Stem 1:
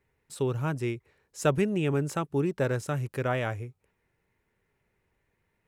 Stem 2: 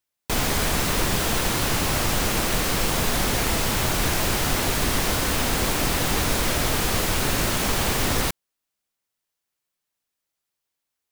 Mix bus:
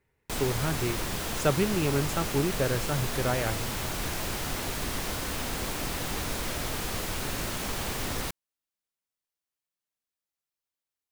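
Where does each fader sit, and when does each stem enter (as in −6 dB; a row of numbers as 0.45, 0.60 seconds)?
−0.5, −9.5 decibels; 0.00, 0.00 seconds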